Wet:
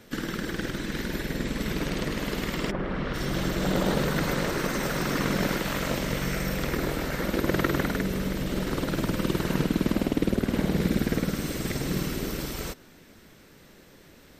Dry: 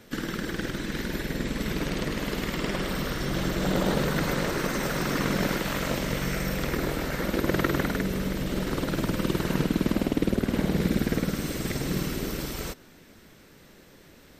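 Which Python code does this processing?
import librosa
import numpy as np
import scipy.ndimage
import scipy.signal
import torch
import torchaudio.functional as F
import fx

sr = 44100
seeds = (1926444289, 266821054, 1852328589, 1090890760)

y = fx.lowpass(x, sr, hz=fx.line((2.7, 1200.0), (3.13, 3200.0)), slope=12, at=(2.7, 3.13), fade=0.02)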